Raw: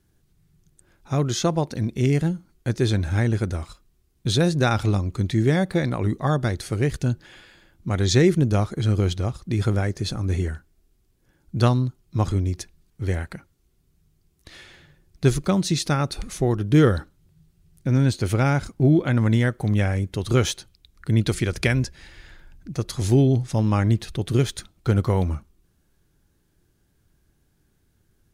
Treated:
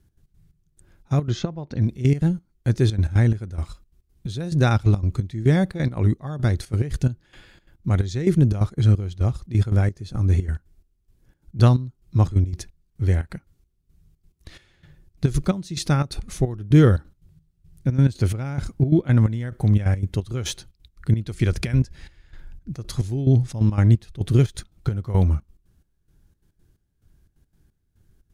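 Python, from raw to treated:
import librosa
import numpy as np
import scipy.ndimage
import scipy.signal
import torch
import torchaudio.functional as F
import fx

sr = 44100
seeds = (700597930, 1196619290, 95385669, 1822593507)

y = fx.low_shelf(x, sr, hz=170.0, db=10.5)
y = fx.step_gate(y, sr, bpm=176, pattern='x.x.xx...xx', floor_db=-12.0, edge_ms=4.5)
y = fx.air_absorb(y, sr, metres=150.0, at=(1.28, 1.8), fade=0.02)
y = F.gain(torch.from_numpy(y), -2.0).numpy()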